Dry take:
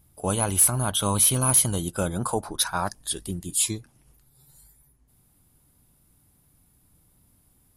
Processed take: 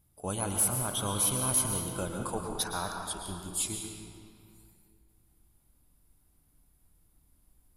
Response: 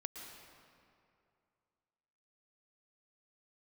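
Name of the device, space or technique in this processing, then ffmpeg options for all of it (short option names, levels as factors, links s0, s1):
stairwell: -filter_complex "[0:a]asubboost=boost=4:cutoff=54[s0];[1:a]atrim=start_sample=2205[s1];[s0][s1]afir=irnorm=-1:irlink=0,volume=0.596"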